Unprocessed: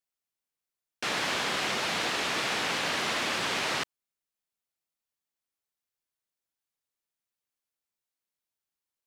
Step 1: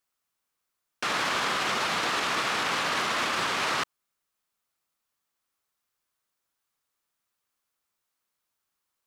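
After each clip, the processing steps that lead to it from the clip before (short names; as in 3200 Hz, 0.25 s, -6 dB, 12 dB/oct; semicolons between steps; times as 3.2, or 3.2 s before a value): bell 1200 Hz +7 dB 0.71 oct; limiter -26 dBFS, peak gain reduction 10 dB; gain +7 dB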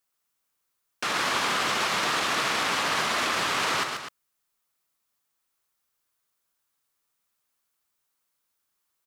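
high shelf 7500 Hz +5 dB; loudspeakers at several distances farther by 46 m -6 dB, 86 m -11 dB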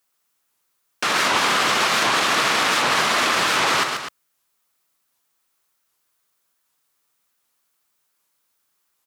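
HPF 100 Hz 6 dB/oct; record warp 78 rpm, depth 250 cents; gain +7 dB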